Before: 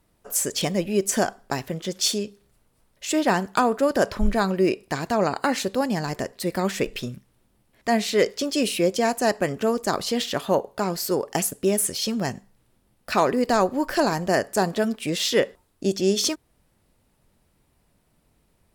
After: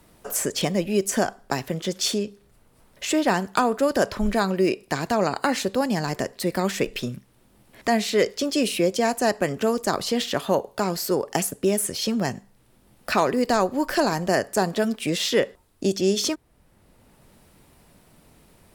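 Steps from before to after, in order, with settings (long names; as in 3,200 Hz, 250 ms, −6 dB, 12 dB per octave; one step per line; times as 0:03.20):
multiband upward and downward compressor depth 40%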